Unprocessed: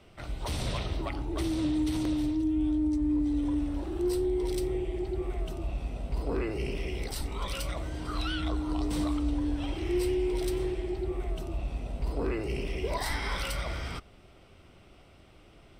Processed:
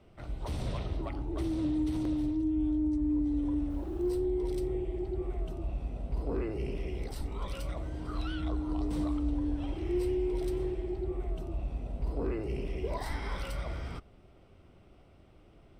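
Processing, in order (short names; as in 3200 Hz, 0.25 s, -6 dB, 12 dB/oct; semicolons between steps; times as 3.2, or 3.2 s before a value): 3.7–4.19 level-crossing sampler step -51 dBFS; tilt shelf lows +5 dB, about 1300 Hz; gain -6.5 dB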